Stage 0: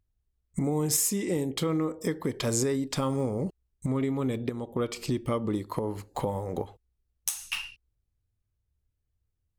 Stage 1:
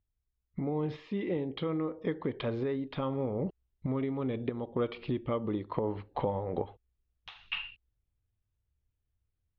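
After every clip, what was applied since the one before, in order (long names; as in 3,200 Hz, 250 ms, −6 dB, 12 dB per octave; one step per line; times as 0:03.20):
Butterworth low-pass 3,700 Hz 48 dB per octave
dynamic equaliser 590 Hz, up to +3 dB, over −37 dBFS, Q 0.83
speech leveller within 4 dB 0.5 s
level −4.5 dB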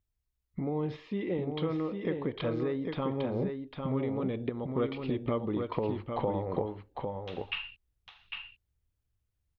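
single-tap delay 802 ms −5 dB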